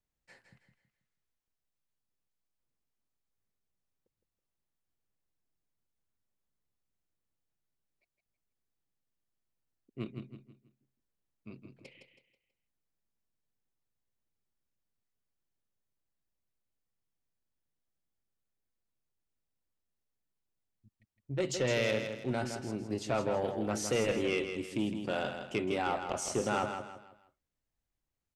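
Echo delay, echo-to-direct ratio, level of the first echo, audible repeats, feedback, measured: 0.162 s, -7.0 dB, -7.5 dB, 4, 35%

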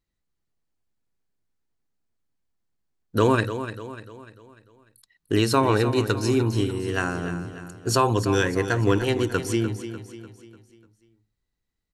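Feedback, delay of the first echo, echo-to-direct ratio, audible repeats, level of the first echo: 46%, 0.297 s, -10.0 dB, 4, -11.0 dB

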